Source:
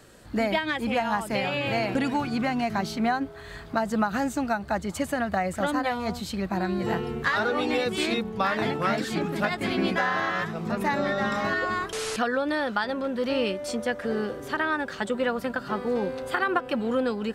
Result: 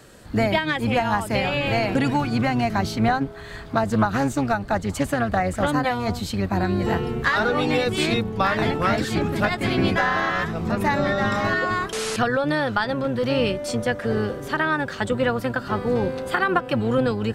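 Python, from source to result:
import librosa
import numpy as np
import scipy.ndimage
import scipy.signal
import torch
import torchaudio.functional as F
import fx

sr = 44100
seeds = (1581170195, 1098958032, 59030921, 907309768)

y = fx.octave_divider(x, sr, octaves=1, level_db=-3.0)
y = fx.doppler_dist(y, sr, depth_ms=0.23, at=(3.08, 5.69))
y = y * 10.0 ** (4.0 / 20.0)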